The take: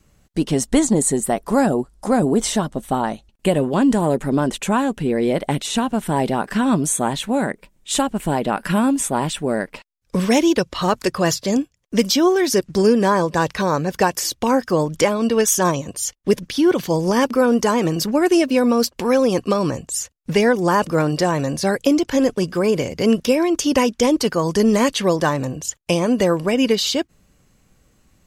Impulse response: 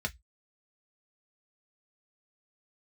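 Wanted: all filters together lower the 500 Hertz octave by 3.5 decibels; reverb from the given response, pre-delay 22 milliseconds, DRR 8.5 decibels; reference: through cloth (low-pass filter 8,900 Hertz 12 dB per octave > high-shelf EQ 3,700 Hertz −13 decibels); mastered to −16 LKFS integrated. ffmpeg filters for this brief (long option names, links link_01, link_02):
-filter_complex "[0:a]equalizer=frequency=500:width_type=o:gain=-4,asplit=2[link_01][link_02];[1:a]atrim=start_sample=2205,adelay=22[link_03];[link_02][link_03]afir=irnorm=-1:irlink=0,volume=-12.5dB[link_04];[link_01][link_04]amix=inputs=2:normalize=0,lowpass=8900,highshelf=frequency=3700:gain=-13,volume=4.5dB"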